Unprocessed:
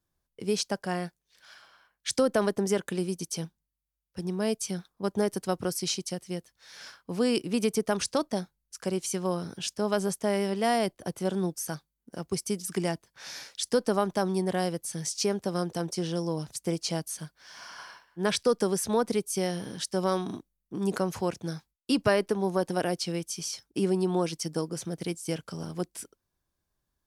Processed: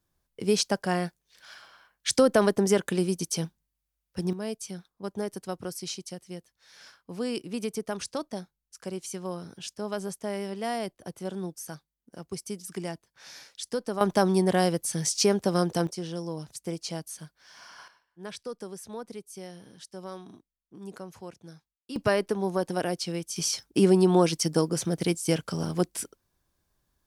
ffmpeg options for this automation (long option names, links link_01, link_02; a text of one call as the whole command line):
ffmpeg -i in.wav -af "asetnsamples=nb_out_samples=441:pad=0,asendcmd='4.33 volume volume -5.5dB;14.01 volume volume 5dB;15.87 volume volume -4dB;17.88 volume volume -13dB;21.96 volume volume -0.5dB;23.36 volume volume 6.5dB',volume=4dB" out.wav